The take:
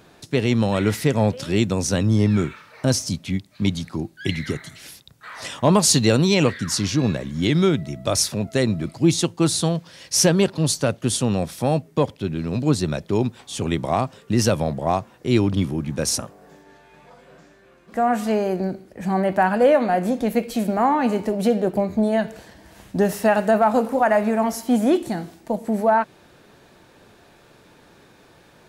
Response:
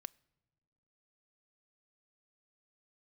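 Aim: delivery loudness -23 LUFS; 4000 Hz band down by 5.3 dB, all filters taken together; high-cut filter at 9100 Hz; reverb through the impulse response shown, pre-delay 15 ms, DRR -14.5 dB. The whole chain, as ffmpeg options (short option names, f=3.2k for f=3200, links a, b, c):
-filter_complex "[0:a]lowpass=9.1k,equalizer=f=4k:t=o:g=-7,asplit=2[a][b];[1:a]atrim=start_sample=2205,adelay=15[c];[b][c]afir=irnorm=-1:irlink=0,volume=19.5dB[d];[a][d]amix=inputs=2:normalize=0,volume=-15.5dB"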